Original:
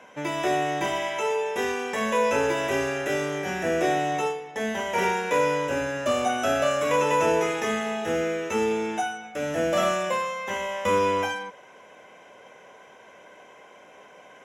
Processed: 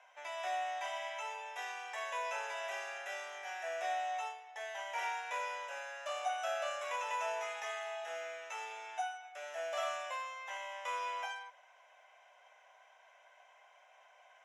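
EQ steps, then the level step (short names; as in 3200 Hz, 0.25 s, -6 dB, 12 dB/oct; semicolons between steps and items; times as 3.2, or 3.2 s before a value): ladder band-pass 760 Hz, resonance 65%; differentiator; tilt +4.5 dB/oct; +14.0 dB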